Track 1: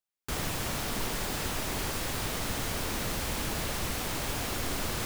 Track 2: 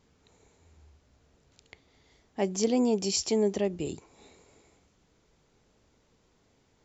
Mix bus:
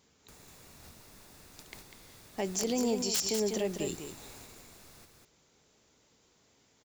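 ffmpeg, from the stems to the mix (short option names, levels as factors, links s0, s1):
-filter_complex "[0:a]bandreject=f=3100:w=9.4,acrossover=split=230|590|3500[s0][s1][s2][s3];[s0]acompressor=threshold=0.00891:ratio=4[s4];[s1]acompressor=threshold=0.00224:ratio=4[s5];[s2]acompressor=threshold=0.00282:ratio=4[s6];[s3]acompressor=threshold=0.00631:ratio=4[s7];[s4][s5][s6][s7]amix=inputs=4:normalize=0,volume=0.376,asplit=2[s8][s9];[s9]volume=0.316[s10];[1:a]highpass=f=44:p=1,highshelf=f=3300:g=9.5,aeval=exprs='(mod(5.01*val(0)+1,2)-1)/5.01':c=same,volume=0.841,asplit=3[s11][s12][s13];[s12]volume=0.376[s14];[s13]apad=whole_len=222768[s15];[s8][s15]sidechaingate=range=0.501:threshold=0.00126:ratio=16:detection=peak[s16];[s10][s14]amix=inputs=2:normalize=0,aecho=0:1:197:1[s17];[s16][s11][s17]amix=inputs=3:normalize=0,lowshelf=f=120:g=-6.5,alimiter=limit=0.0794:level=0:latency=1:release=49"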